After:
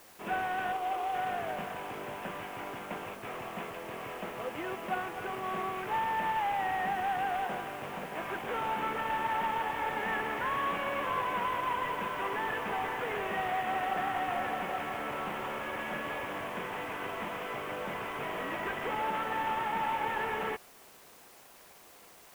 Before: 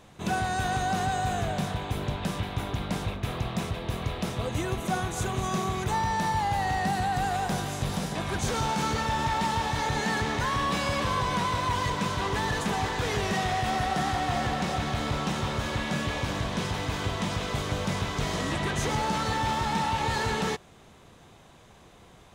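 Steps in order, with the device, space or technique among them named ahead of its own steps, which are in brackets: 0.72–1.15 Chebyshev band-pass 310–1300 Hz, order 4; army field radio (BPF 370–3100 Hz; CVSD 16 kbps; white noise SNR 23 dB); gain -2.5 dB

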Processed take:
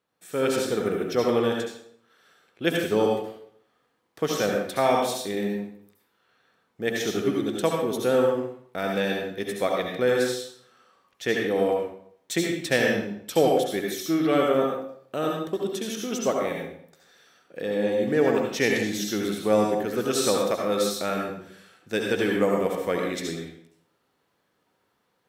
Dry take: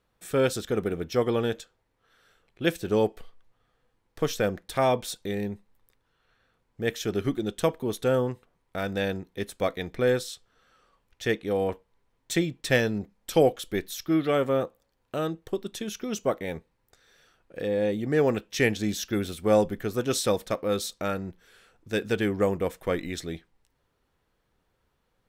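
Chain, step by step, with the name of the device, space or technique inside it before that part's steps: far laptop microphone (reverb RT60 0.65 s, pre-delay 64 ms, DRR 0 dB; HPF 170 Hz 12 dB/oct; AGC gain up to 6 dB); gain -5 dB

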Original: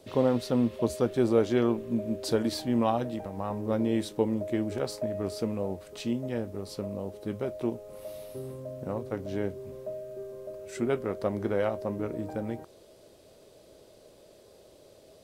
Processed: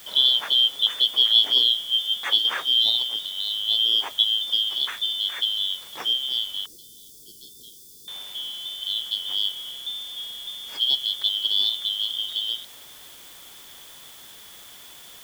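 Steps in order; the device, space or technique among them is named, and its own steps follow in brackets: split-band scrambled radio (four-band scrambler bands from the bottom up 3412; BPF 300–3100 Hz; white noise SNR 21 dB); 6.66–8.08 Chebyshev band-stop 440–4700 Hz, order 4; gain +9 dB

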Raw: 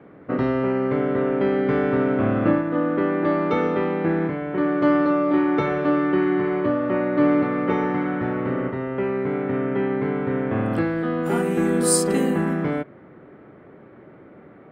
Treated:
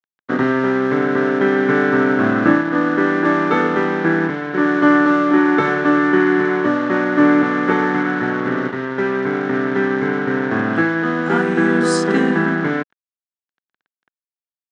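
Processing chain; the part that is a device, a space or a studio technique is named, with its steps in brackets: blown loudspeaker (crossover distortion -36 dBFS; speaker cabinet 180–5800 Hz, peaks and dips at 550 Hz -8 dB, 1600 Hz +10 dB, 2500 Hz -4 dB, 4700 Hz -6 dB); gain +7.5 dB

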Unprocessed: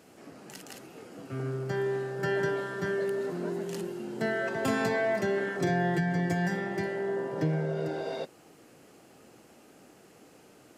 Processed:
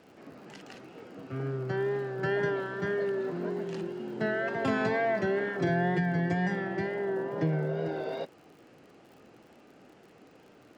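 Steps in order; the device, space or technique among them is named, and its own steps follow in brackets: lo-fi chain (LPF 3800 Hz 12 dB/oct; wow and flutter; crackle 59/s -49 dBFS)

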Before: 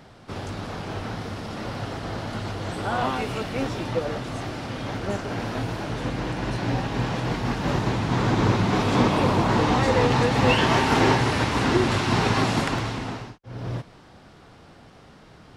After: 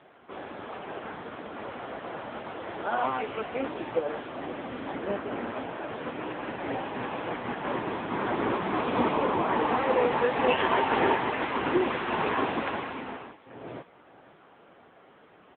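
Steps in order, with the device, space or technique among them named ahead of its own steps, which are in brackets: 4.37–5.51 dynamic EQ 230 Hz, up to +5 dB, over -42 dBFS, Q 1.4; satellite phone (BPF 320–3000 Hz; echo 0.525 s -19.5 dB; AMR-NB 6.7 kbps 8000 Hz)

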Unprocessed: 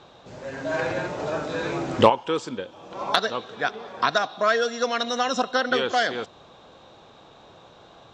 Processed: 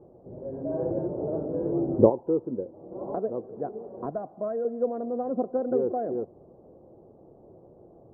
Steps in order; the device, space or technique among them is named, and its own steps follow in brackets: 4.1–4.65 bell 390 Hz -7.5 dB 1 oct; under water (LPF 590 Hz 24 dB/oct; bell 360 Hz +6 dB 0.32 oct)

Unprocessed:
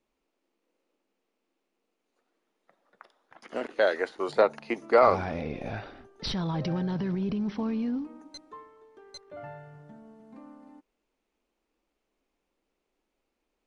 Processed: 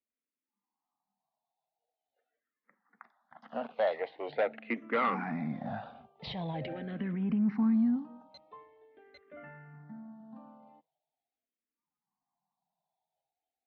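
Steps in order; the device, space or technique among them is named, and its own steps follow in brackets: barber-pole phaser into a guitar amplifier (endless phaser -0.44 Hz; soft clip -22 dBFS, distortion -11 dB; speaker cabinet 84–3400 Hz, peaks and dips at 100 Hz -7 dB, 150 Hz +4 dB, 230 Hz +8 dB, 370 Hz -8 dB, 740 Hz +6 dB, 2000 Hz +5 dB); spectral noise reduction 17 dB; gain -2 dB

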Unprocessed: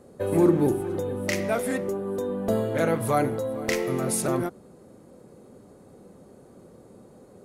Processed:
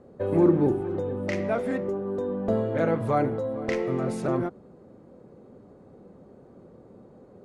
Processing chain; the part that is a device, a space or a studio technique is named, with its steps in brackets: through cloth (LPF 6600 Hz 12 dB/oct; high shelf 3000 Hz -14 dB)

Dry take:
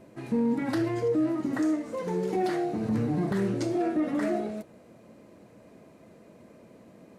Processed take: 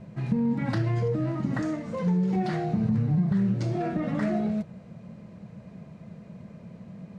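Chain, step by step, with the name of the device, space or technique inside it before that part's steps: jukebox (LPF 5600 Hz 12 dB/oct; resonant low shelf 230 Hz +8.5 dB, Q 3; compressor 5:1, threshold -24 dBFS, peak gain reduction 11 dB); gain +2 dB

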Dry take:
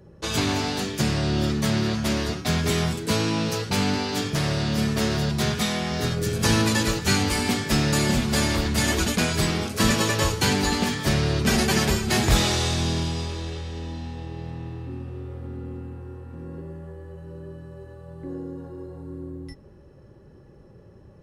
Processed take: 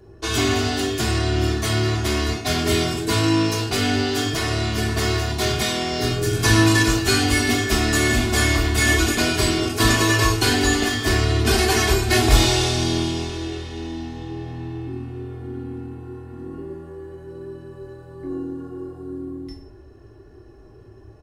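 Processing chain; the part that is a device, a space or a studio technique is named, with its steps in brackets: microphone above a desk (comb 2.8 ms, depth 84%; reverb RT60 0.50 s, pre-delay 13 ms, DRR 2.5 dB)

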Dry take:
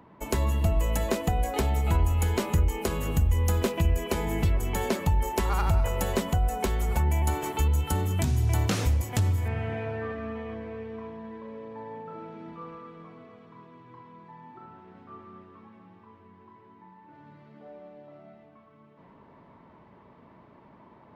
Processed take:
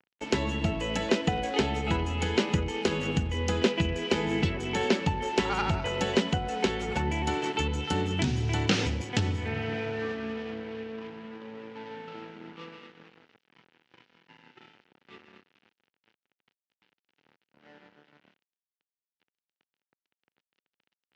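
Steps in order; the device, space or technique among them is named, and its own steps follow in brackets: blown loudspeaker (crossover distortion -45 dBFS; speaker cabinet 160–5800 Hz, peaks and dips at 640 Hz -8 dB, 1100 Hz -9 dB, 2900 Hz +5 dB); gain +5 dB

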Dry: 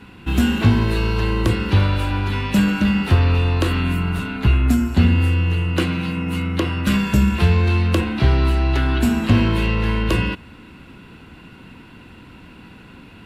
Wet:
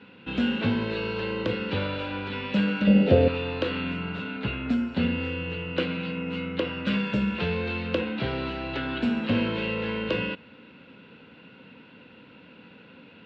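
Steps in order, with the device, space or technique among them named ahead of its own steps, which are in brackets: 2.87–3.28 resonant low shelf 790 Hz +8.5 dB, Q 3; kitchen radio (speaker cabinet 210–3900 Hz, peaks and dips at 350 Hz -8 dB, 510 Hz +8 dB, 730 Hz -6 dB, 1100 Hz -7 dB, 1900 Hz -4 dB); gain -4 dB

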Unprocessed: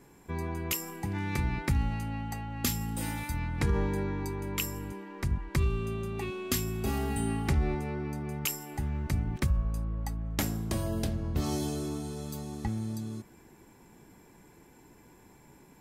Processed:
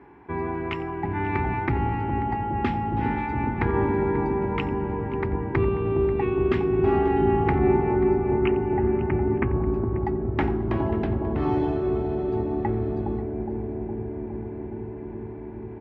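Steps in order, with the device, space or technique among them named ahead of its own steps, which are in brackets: 8.31–9.63 steep low-pass 3000 Hz 72 dB/oct; analogue delay 0.413 s, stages 2048, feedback 84%, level -4.5 dB; sub-octave bass pedal (octaver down 2 oct, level -1 dB; speaker cabinet 70–2300 Hz, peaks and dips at 79 Hz -9 dB, 140 Hz -8 dB, 200 Hz -7 dB, 380 Hz +5 dB, 540 Hz -9 dB, 850 Hz +6 dB); tapped delay 89/537 ms -19.5/-17.5 dB; gain +7.5 dB

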